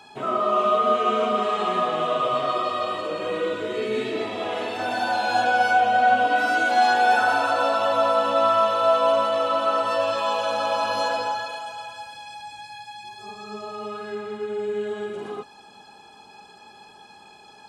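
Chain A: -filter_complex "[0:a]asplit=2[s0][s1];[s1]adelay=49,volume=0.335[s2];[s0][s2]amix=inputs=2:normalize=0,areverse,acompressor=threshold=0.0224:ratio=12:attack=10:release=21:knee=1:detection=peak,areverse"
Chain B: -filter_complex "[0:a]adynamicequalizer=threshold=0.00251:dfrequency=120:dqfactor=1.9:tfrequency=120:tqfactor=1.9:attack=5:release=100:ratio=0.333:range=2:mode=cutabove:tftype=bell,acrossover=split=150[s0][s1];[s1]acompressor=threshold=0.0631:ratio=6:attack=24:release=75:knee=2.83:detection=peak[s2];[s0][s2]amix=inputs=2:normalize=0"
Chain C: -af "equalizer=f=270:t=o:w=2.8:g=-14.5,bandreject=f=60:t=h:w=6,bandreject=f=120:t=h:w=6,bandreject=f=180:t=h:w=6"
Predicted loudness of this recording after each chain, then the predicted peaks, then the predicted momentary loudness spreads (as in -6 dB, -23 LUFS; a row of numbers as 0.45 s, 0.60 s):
-32.5 LUFS, -25.5 LUFS, -27.0 LUFS; -21.0 dBFS, -12.5 dBFS, -13.0 dBFS; 14 LU, 13 LU, 17 LU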